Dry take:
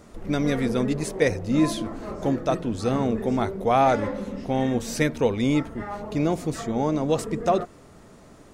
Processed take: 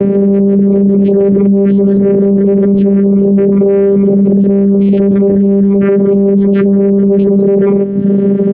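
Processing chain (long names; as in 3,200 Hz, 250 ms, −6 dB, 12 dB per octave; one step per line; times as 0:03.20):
channel vocoder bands 4, saw 198 Hz
low shelf with overshoot 630 Hz +10 dB, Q 3
on a send: loudspeakers that aren't time-aligned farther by 47 metres −10 dB, 64 metres −11 dB
on the sum: reverb reduction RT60 0.69 s
low-pass filter 2,400 Hz 24 dB per octave
boost into a limiter +33.5 dB
multiband upward and downward compressor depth 40%
level −2 dB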